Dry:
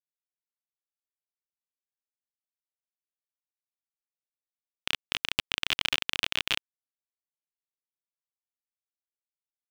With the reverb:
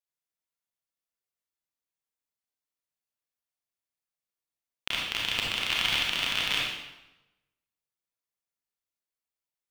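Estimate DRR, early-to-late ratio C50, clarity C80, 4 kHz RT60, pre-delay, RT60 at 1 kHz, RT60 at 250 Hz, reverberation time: −4.5 dB, −1.0 dB, 3.0 dB, 0.80 s, 28 ms, 0.95 s, 1.1 s, 1.0 s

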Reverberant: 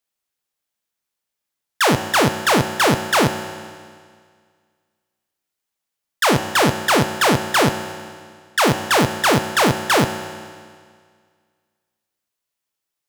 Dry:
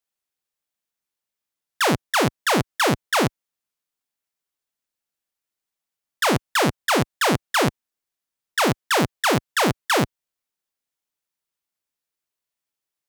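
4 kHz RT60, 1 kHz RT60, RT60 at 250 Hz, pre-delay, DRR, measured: 1.8 s, 1.9 s, 1.9 s, 4 ms, 8.0 dB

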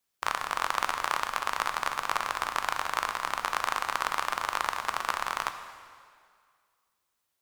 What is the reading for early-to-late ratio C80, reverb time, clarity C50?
9.5 dB, 2.0 s, 8.5 dB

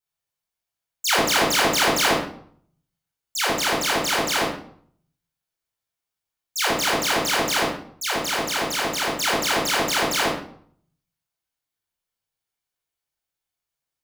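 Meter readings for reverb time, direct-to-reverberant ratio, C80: 0.55 s, −4.0 dB, 6.5 dB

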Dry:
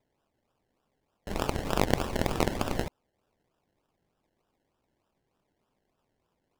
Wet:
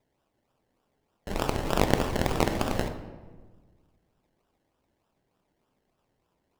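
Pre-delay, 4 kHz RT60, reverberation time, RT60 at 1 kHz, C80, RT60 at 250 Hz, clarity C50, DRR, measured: 13 ms, 0.80 s, 1.4 s, 1.3 s, 11.0 dB, 1.8 s, 9.0 dB, 7.5 dB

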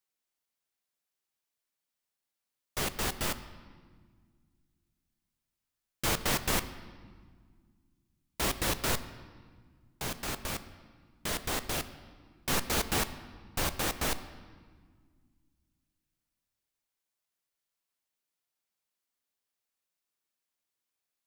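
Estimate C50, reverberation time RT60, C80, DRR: 13.5 dB, 1.7 s, 14.5 dB, 11.5 dB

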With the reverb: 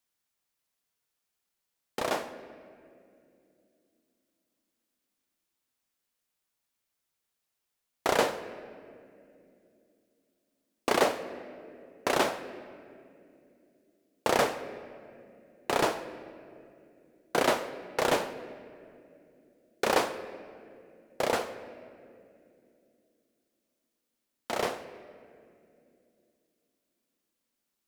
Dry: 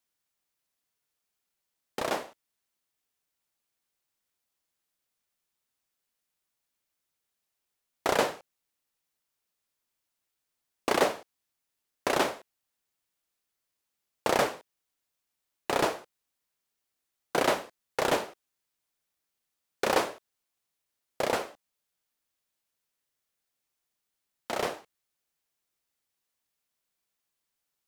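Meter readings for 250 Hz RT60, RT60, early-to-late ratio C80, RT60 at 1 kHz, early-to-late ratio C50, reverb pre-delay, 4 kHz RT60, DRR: 4.2 s, 2.6 s, 13.0 dB, 2.1 s, 12.5 dB, 4 ms, 1.5 s, 11.0 dB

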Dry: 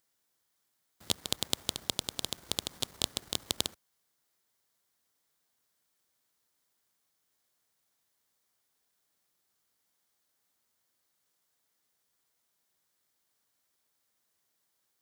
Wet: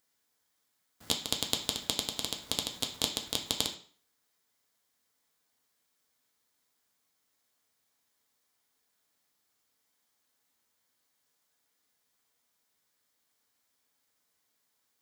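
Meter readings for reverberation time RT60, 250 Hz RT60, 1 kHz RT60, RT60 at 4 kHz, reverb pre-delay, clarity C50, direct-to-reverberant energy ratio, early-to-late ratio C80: 0.50 s, 0.50 s, 0.50 s, 0.40 s, 3 ms, 10.0 dB, 2.0 dB, 14.5 dB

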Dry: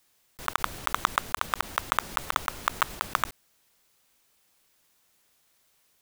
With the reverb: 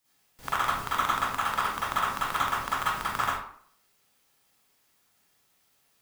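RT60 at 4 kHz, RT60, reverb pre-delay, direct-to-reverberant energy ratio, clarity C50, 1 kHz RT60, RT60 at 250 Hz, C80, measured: 0.40 s, 0.55 s, 38 ms, −10.5 dB, −4.0 dB, 0.60 s, 0.55 s, 3.0 dB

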